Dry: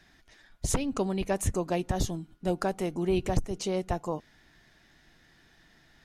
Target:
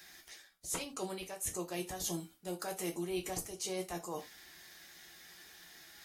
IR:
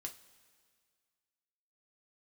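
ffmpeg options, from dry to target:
-filter_complex "[0:a]aemphasis=mode=production:type=riaa,areverse,acompressor=threshold=0.0126:ratio=16,areverse[s0];[1:a]atrim=start_sample=2205,atrim=end_sample=4410,asetrate=48510,aresample=44100[s1];[s0][s1]afir=irnorm=-1:irlink=0,volume=2.11" -ar 48000 -c:a aac -b:a 64k

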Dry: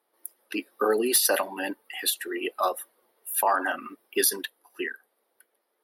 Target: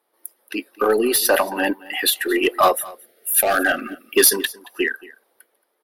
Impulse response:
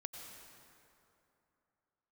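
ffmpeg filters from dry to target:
-filter_complex "[0:a]asettb=1/sr,asplit=3[s0][s1][s2];[s0]atrim=end=1.034[s3];[s1]atrim=start=1.03:end=2.26,asetpts=PTS-STARTPTS,afade=t=in:d=0.004:c=qsin,afade=t=out:st=1.226:d=0.004:c=qsin,equalizer=f=7600:w=0.65:g=-7.5[s4];[s2]atrim=start=2.256[s5];[s3][s4]acrossfade=d=0.004:c1=hsin:c2=qsin[s6];[s6][s5]acrossfade=d=0.004:c1=qsin:c2=hsin,dynaudnorm=f=560:g=5:m=3.16,asplit=2[s7][s8];[s8]aeval=exprs='0.178*(abs(mod(val(0)/0.178+3,4)-2)-1)':c=same,volume=0.355[s9];[s7][s9]amix=inputs=2:normalize=0,aeval=exprs='0.794*(cos(1*acos(clip(val(0)/0.794,-1,1)))-cos(1*PI/2))+0.0282*(cos(2*acos(clip(val(0)/0.794,-1,1)))-cos(2*PI/2))+0.00708*(cos(8*acos(clip(val(0)/0.794,-1,1)))-cos(8*PI/2))':c=same,asettb=1/sr,asplit=3[s10][s11][s12];[s10]atrim=end=2.764[s13];[s11]atrim=start=2.76:end=4.17,asetpts=PTS-STARTPTS,afade=t=in:d=0.004:c=qsin,afade=t=out:st=1.406:d=0.004:c=qsin,asuperstop=centerf=980:order=4:qfactor=1.5[s14];[s12]atrim=start=4.166[s15];[s13][s14]acrossfade=d=0.004:c1=hsin:c2=qsin[s16];[s16][s15]acrossfade=d=0.004:c1=qsin:c2=hsin,asplit=2[s17][s18];[s18]aecho=0:1:225:0.0891[s19];[s17][s19]amix=inputs=2:normalize=0,volume=1.12"

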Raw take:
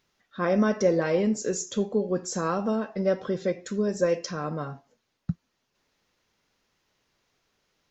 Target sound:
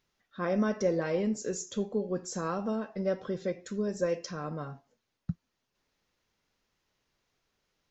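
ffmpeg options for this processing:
-af "lowshelf=f=81:g=6,volume=0.501"

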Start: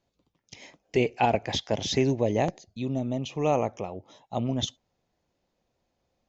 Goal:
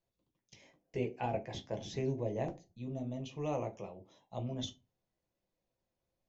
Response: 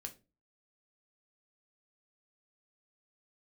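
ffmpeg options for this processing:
-filter_complex "[0:a]asettb=1/sr,asplit=3[s0][s1][s2];[s0]atrim=end=0.614[s3];[s1]atrim=start=0.61:end=2.95,asetpts=PTS-STARTPTS,afade=t=in:d=0.004:c=qsin,afade=t=out:st=2.336:d=0.004:c=qsin,equalizer=f=4200:w=0.57:g=-6.5[s4];[s2]atrim=start=2.946[s5];[s3][s4]acrossfade=d=0.004:c1=hsin:c2=qsin[s6];[s6][s5]acrossfade=d=0.004:c1=qsin:c2=hsin[s7];[1:a]atrim=start_sample=2205,asetrate=57330,aresample=44100[s8];[s7][s8]afir=irnorm=-1:irlink=0,volume=0.531"

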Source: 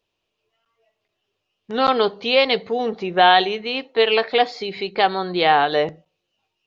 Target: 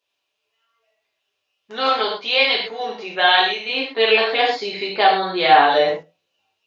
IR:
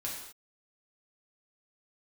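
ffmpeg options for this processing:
-filter_complex "[0:a]asetnsamples=n=441:p=0,asendcmd='3.69 highpass f 370',highpass=f=1100:p=1[s0];[1:a]atrim=start_sample=2205,atrim=end_sample=6174[s1];[s0][s1]afir=irnorm=-1:irlink=0,volume=1.33"

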